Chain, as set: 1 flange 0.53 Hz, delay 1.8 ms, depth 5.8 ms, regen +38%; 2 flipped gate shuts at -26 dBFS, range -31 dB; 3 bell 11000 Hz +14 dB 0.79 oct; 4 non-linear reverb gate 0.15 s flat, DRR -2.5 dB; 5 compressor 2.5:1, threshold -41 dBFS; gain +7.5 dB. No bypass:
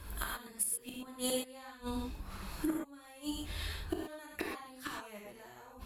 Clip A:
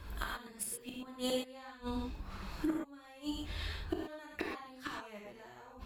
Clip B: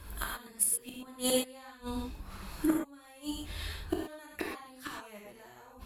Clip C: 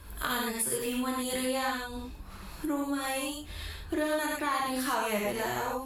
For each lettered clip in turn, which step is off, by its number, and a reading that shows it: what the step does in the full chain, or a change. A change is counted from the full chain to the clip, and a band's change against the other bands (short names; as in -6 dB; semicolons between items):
3, 8 kHz band -7.0 dB; 5, crest factor change +4.0 dB; 2, momentary loudness spread change -2 LU